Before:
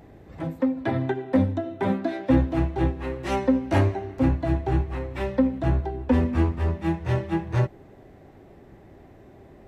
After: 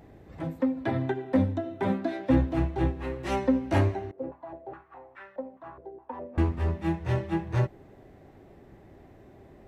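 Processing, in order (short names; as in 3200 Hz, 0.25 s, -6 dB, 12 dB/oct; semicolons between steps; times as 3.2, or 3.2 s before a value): 4.11–6.38 stepped band-pass 4.8 Hz 490–1500 Hz; gain -3 dB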